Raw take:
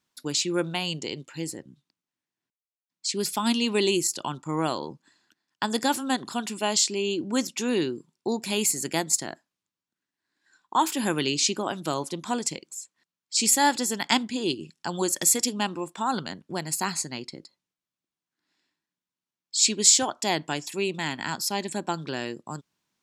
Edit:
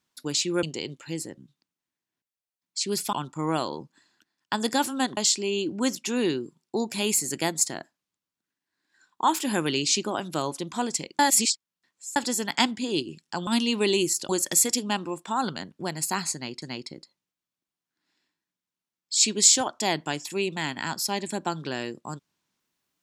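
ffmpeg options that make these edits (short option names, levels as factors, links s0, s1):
-filter_complex "[0:a]asplit=9[s0][s1][s2][s3][s4][s5][s6][s7][s8];[s0]atrim=end=0.632[s9];[s1]atrim=start=0.908:end=3.412[s10];[s2]atrim=start=4.228:end=6.272[s11];[s3]atrim=start=6.688:end=12.712[s12];[s4]atrim=start=12.708:end=13.682,asetpts=PTS-STARTPTS,areverse[s13];[s5]atrim=start=13.678:end=14.992[s14];[s6]atrim=start=3.408:end=4.232[s15];[s7]atrim=start=14.988:end=17.322[s16];[s8]atrim=start=17.038[s17];[s9][s10]acrossfade=d=0.004:c1=hsin:c2=hsin[s18];[s18][s11]acrossfade=d=0.004:c1=hsin:c2=hsin[s19];[s19][s12]acrossfade=d=0.004:c1=hsin:c2=hsin[s20];[s20][s13]acrossfade=d=0.004:c1=hsin:c2=hsin[s21];[s21][s14]acrossfade=d=0.004:c1=hsin:c2=hsin[s22];[s22][s15]acrossfade=d=0.004:c1=hsin:c2=hsin[s23];[s23][s16]acrossfade=d=0.004:c1=hsin:c2=hsin[s24];[s24][s17]acrossfade=d=0.004:c1=hsin:c2=hsin"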